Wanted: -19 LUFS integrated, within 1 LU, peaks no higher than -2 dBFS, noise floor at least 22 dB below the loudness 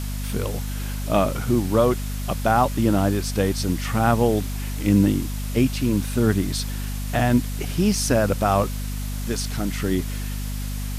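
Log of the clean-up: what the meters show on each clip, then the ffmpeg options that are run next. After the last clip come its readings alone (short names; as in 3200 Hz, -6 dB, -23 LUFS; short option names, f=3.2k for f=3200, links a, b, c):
hum 50 Hz; harmonics up to 250 Hz; hum level -25 dBFS; noise floor -28 dBFS; noise floor target -45 dBFS; loudness -23.0 LUFS; peak -6.5 dBFS; loudness target -19.0 LUFS
-> -af "bandreject=f=50:t=h:w=4,bandreject=f=100:t=h:w=4,bandreject=f=150:t=h:w=4,bandreject=f=200:t=h:w=4,bandreject=f=250:t=h:w=4"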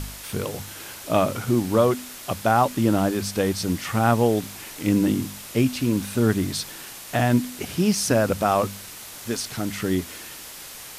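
hum none; noise floor -40 dBFS; noise floor target -46 dBFS
-> -af "afftdn=nr=6:nf=-40"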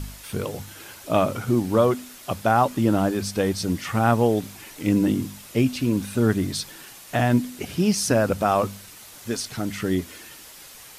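noise floor -45 dBFS; noise floor target -46 dBFS
-> -af "afftdn=nr=6:nf=-45"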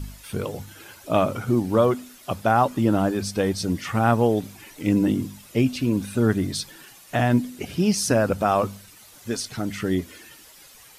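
noise floor -49 dBFS; loudness -23.5 LUFS; peak -7.5 dBFS; loudness target -19.0 LUFS
-> -af "volume=4.5dB"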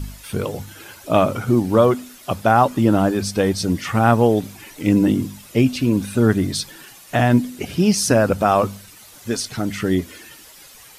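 loudness -19.0 LUFS; peak -3.0 dBFS; noise floor -44 dBFS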